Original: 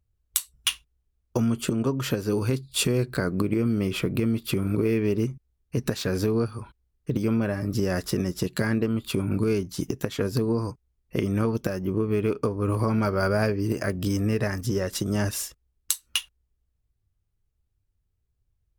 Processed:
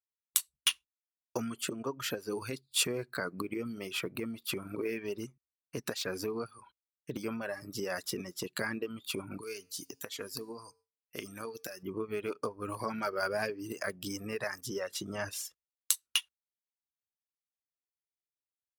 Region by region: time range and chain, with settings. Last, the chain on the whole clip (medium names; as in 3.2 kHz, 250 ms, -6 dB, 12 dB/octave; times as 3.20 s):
9.41–11.83 s: treble shelf 2.9 kHz +11 dB + feedback comb 90 Hz, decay 0.76 s, harmonics odd
14.88–15.45 s: treble shelf 5.9 kHz -8 dB + doubling 21 ms -9.5 dB
whole clip: reverb removal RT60 1.6 s; gate with hold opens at -51 dBFS; high-pass 650 Hz 6 dB/octave; trim -3 dB